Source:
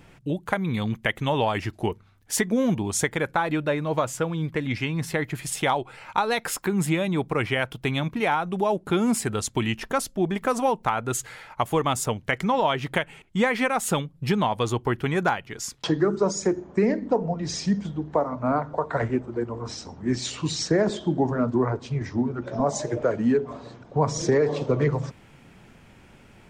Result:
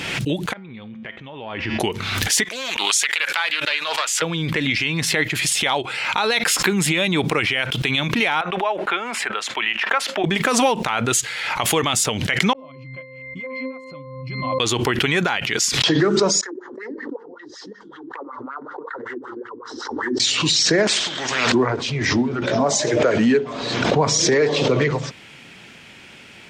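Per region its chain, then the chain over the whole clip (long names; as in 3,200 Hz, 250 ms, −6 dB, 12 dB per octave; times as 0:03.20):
0:00.53–0:01.80: head-to-tape spacing loss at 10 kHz 38 dB + downward compressor, threshold −32 dBFS + tuned comb filter 74 Hz, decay 0.43 s, harmonics odd
0:02.44–0:04.22: high-pass filter 1,200 Hz + highs frequency-modulated by the lows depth 0.22 ms
0:08.41–0:10.24: high-pass filter 280 Hz + three-way crossover with the lows and the highs turned down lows −17 dB, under 600 Hz, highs −22 dB, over 2,500 Hz
0:12.53–0:14.60: fake sidechain pumping 160 BPM, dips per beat 2, −20 dB, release 115 ms + resonances in every octave C, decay 0.55 s
0:16.41–0:20.20: phaser with its sweep stopped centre 650 Hz, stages 6 + downward compressor 5 to 1, threshold −26 dBFS + LFO wah 5.3 Hz 250–2,000 Hz, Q 4.3
0:20.87–0:21.52: downward compressor 3 to 1, threshold −27 dBFS + every bin compressed towards the loudest bin 4 to 1
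whole clip: meter weighting curve D; boost into a limiter +13 dB; background raised ahead of every attack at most 33 dB per second; level −7.5 dB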